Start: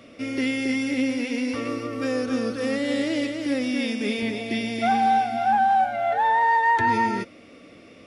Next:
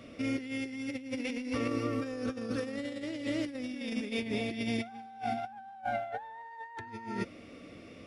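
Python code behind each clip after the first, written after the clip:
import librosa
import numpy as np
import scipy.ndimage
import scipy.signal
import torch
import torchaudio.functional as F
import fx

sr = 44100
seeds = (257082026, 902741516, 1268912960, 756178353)

y = fx.low_shelf(x, sr, hz=150.0, db=8.5)
y = fx.over_compress(y, sr, threshold_db=-27.0, ratio=-0.5)
y = y * 10.0 ** (-8.5 / 20.0)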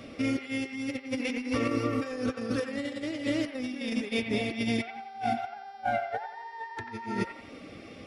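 y = fx.dereverb_blind(x, sr, rt60_s=0.52)
y = fx.dmg_buzz(y, sr, base_hz=400.0, harmonics=14, level_db=-65.0, tilt_db=-3, odd_only=False)
y = fx.echo_wet_bandpass(y, sr, ms=89, feedback_pct=41, hz=1400.0, wet_db=-6.5)
y = y * 10.0 ** (5.0 / 20.0)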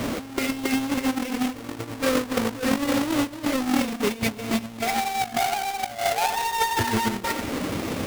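y = fx.halfwave_hold(x, sr)
y = fx.over_compress(y, sr, threshold_db=-32.0, ratio=-0.5)
y = y * 10.0 ** (7.5 / 20.0)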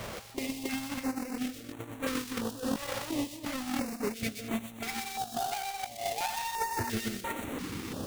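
y = fx.echo_wet_highpass(x, sr, ms=124, feedback_pct=34, hz=3600.0, wet_db=-3.5)
y = fx.filter_held_notch(y, sr, hz=2.9, low_hz=270.0, high_hz=5000.0)
y = y * 10.0 ** (-8.5 / 20.0)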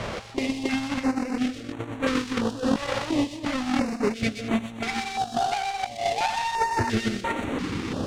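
y = fx.air_absorb(x, sr, metres=94.0)
y = y * 10.0 ** (9.0 / 20.0)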